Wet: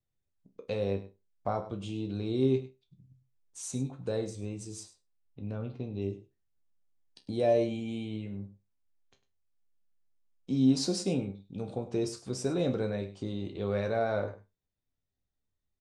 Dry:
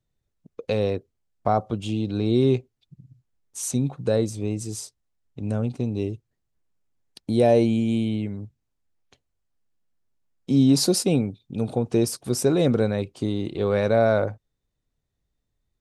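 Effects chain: LPF 9300 Hz 24 dB/oct, from 4.83 s 4400 Hz, from 6.02 s 8000 Hz; resonator bank C2 sus4, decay 0.23 s; echo 0.101 s -15 dB

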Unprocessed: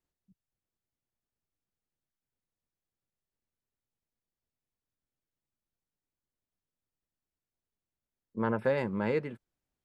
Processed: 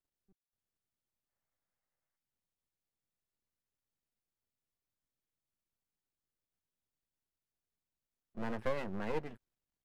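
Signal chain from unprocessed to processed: spectral gain 1.3–2.17, 480–2200 Hz +9 dB; half-wave rectifier; gain -2 dB

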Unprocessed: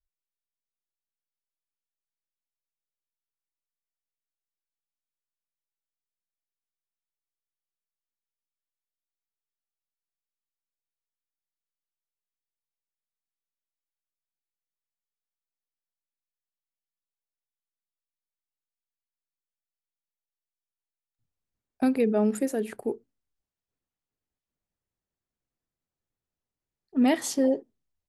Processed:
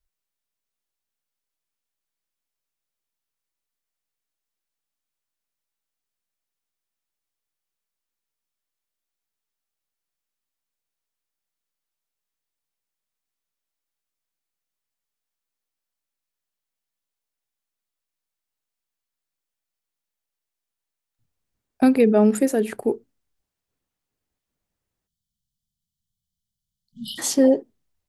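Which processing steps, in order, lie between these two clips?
spectral delete 25.07–27.19, 230–2900 Hz; gain +7.5 dB

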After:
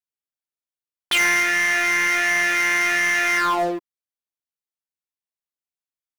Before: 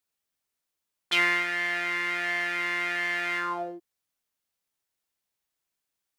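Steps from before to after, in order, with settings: sample leveller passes 5; gain -4 dB

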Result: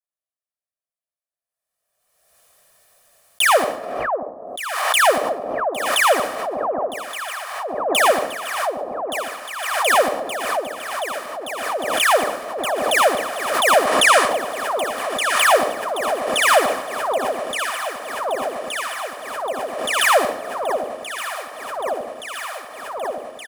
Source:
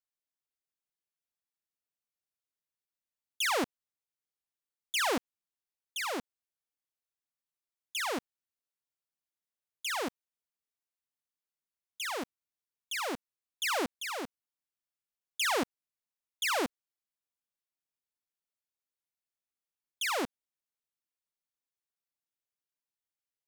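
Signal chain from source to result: sample leveller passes 5; fifteen-band EQ 630 Hz +9 dB, 1600 Hz +4 dB, 10000 Hz +8 dB; reverb RT60 0.70 s, pre-delay 54 ms, DRR 4.5 dB; spectral gain 13.87–14.29, 920–11000 Hz +8 dB; bell 840 Hz +4.5 dB 1.2 oct; comb 1.7 ms, depth 50%; echo with dull and thin repeats by turns 0.586 s, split 920 Hz, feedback 89%, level -7 dB; backwards sustainer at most 39 dB/s

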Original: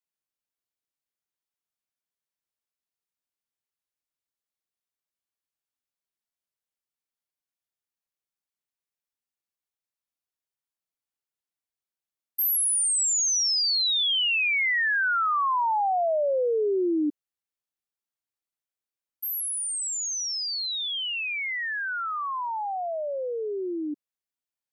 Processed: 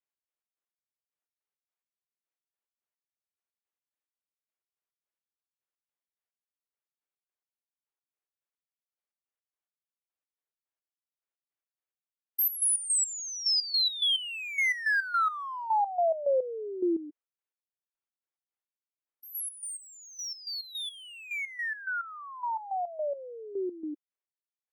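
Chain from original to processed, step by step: Wiener smoothing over 9 samples; steep high-pass 320 Hz 36 dB/oct; step gate "x.x.x..." 107 bpm -12 dB

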